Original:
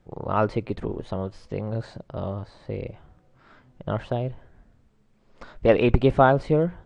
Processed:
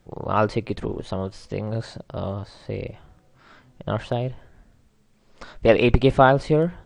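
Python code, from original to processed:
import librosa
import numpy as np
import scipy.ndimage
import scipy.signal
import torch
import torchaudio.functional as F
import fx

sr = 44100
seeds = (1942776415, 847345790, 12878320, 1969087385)

y = fx.high_shelf(x, sr, hz=3200.0, db=10.0)
y = F.gain(torch.from_numpy(y), 1.5).numpy()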